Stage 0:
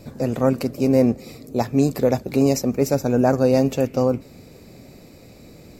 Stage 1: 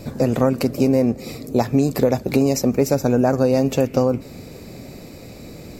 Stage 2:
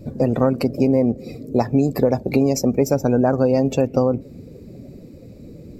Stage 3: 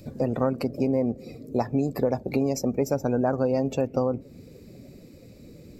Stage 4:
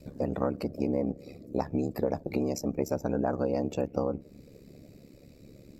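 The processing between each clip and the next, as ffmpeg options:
-af "acompressor=threshold=0.1:ratio=6,volume=2.24"
-af "afftdn=nr=16:nf=-33"
-filter_complex "[0:a]acrossover=split=1500[s0][s1];[s0]crystalizer=i=8:c=0[s2];[s1]acompressor=mode=upward:threshold=0.00562:ratio=2.5[s3];[s2][s3]amix=inputs=2:normalize=0,volume=0.398"
-af "aeval=exprs='val(0)*sin(2*PI*35*n/s)':c=same,volume=0.794"

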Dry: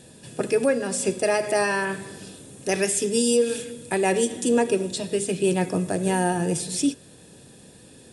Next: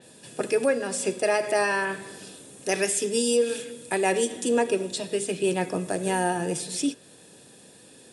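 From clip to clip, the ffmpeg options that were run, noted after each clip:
-af "highpass=f=330:p=1,adynamicequalizer=threshold=0.00794:dfrequency=4500:dqfactor=0.7:tfrequency=4500:tqfactor=0.7:attack=5:release=100:ratio=0.375:range=2:mode=cutabove:tftype=highshelf"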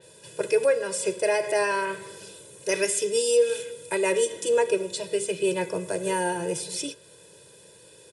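-af "aecho=1:1:2:0.94,volume=0.708"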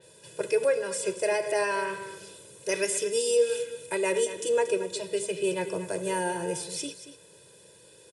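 -af "aecho=1:1:231:0.237,volume=0.708"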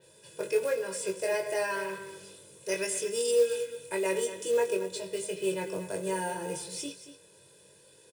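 -filter_complex "[0:a]acrusher=bits=5:mode=log:mix=0:aa=0.000001,asplit=2[s0][s1];[s1]adelay=21,volume=0.631[s2];[s0][s2]amix=inputs=2:normalize=0,volume=0.562"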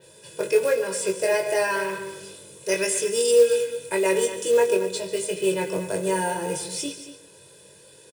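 -af "aecho=1:1:143:0.178,volume=2.37"

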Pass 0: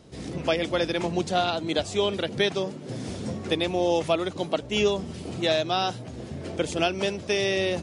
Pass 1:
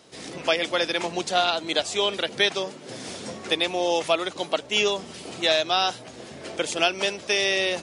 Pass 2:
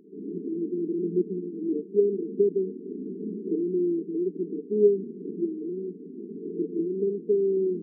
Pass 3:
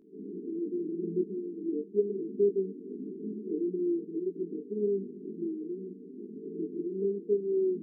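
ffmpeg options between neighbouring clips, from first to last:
-af "highpass=f=940:p=1,volume=2"
-af "afftfilt=real='re*between(b*sr/4096,170,460)':imag='im*between(b*sr/4096,170,460)':win_size=4096:overlap=0.75,volume=2.11"
-af "flanger=delay=18.5:depth=2.1:speed=0.92,volume=0.794"

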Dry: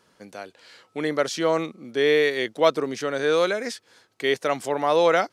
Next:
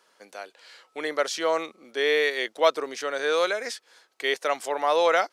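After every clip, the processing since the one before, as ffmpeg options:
-af "highpass=510"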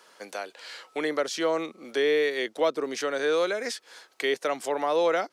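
-filter_complex "[0:a]acrossover=split=350[s0][s1];[s1]acompressor=threshold=0.01:ratio=2.5[s2];[s0][s2]amix=inputs=2:normalize=0,volume=2.37"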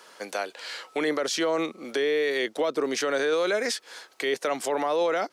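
-af "alimiter=limit=0.075:level=0:latency=1:release=18,volume=1.78"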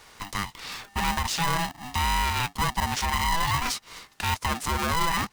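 -af "aeval=exprs='val(0)*sgn(sin(2*PI*500*n/s))':c=same"

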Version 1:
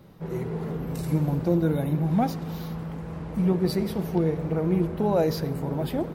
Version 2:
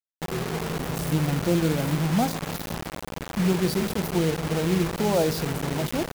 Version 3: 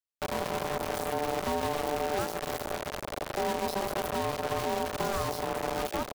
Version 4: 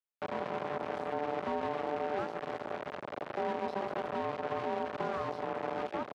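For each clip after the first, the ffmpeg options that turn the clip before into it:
-af "acrusher=bits=4:mix=0:aa=0.000001"
-filter_complex "[0:a]acrossover=split=120|310|2100[s0][s1][s2][s3];[s0]acompressor=threshold=0.01:ratio=4[s4];[s1]acompressor=threshold=0.02:ratio=4[s5];[s2]acompressor=threshold=0.02:ratio=4[s6];[s3]acompressor=threshold=0.0126:ratio=4[s7];[s4][s5][s6][s7]amix=inputs=4:normalize=0,aeval=exprs='0.133*(cos(1*acos(clip(val(0)/0.133,-1,1)))-cos(1*PI/2))+0.0237*(cos(8*acos(clip(val(0)/0.133,-1,1)))-cos(8*PI/2))':c=same,aeval=exprs='val(0)*sin(2*PI*590*n/s)':c=same"
-af "highpass=150,lowpass=2300,volume=0.668"

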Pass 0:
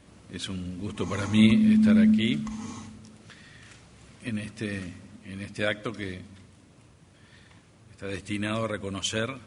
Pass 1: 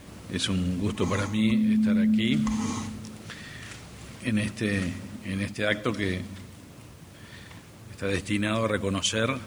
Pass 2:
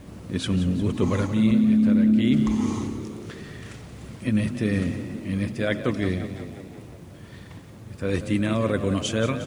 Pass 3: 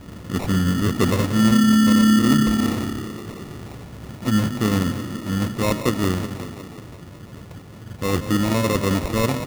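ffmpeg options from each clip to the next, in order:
-af "areverse,acompressor=threshold=0.0316:ratio=6,areverse,acrusher=bits=10:mix=0:aa=0.000001,volume=2.66"
-filter_complex "[0:a]tiltshelf=f=860:g=4.5,asplit=2[s0][s1];[s1]asplit=7[s2][s3][s4][s5][s6][s7][s8];[s2]adelay=178,afreqshift=34,volume=0.251[s9];[s3]adelay=356,afreqshift=68,volume=0.151[s10];[s4]adelay=534,afreqshift=102,volume=0.0902[s11];[s5]adelay=712,afreqshift=136,volume=0.0543[s12];[s6]adelay=890,afreqshift=170,volume=0.0327[s13];[s7]adelay=1068,afreqshift=204,volume=0.0195[s14];[s8]adelay=1246,afreqshift=238,volume=0.0117[s15];[s9][s10][s11][s12][s13][s14][s15]amix=inputs=7:normalize=0[s16];[s0][s16]amix=inputs=2:normalize=0"
-af "acrusher=samples=28:mix=1:aa=0.000001,volume=1.5"

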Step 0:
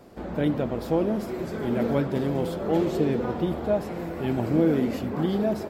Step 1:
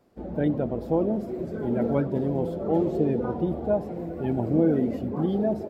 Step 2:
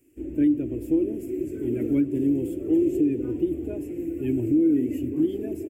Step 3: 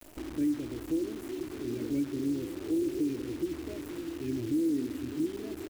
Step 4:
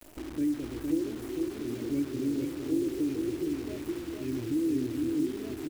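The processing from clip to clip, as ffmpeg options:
-af "afftdn=nr=14:nf=-32"
-af "firequalizer=gain_entry='entry(120,0);entry(200,-18);entry(290,12);entry(480,-10);entry(770,-24);entry(1300,-17);entry(1800,-4);entry(2600,8);entry(3900,-13);entry(7500,13)':delay=0.05:min_phase=1,alimiter=limit=0.2:level=0:latency=1:release=216"
-af "acrusher=bits=7:dc=4:mix=0:aa=0.000001,acompressor=mode=upward:threshold=0.0501:ratio=2.5,volume=0.376"
-af "aecho=1:1:461:0.631"

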